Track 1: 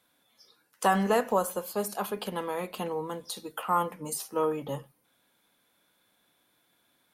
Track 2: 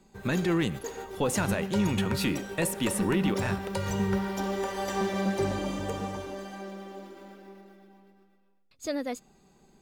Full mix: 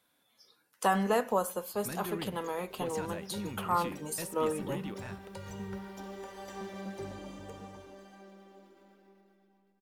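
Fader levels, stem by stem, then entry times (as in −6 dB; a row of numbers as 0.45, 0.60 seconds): −3.0, −13.0 decibels; 0.00, 1.60 seconds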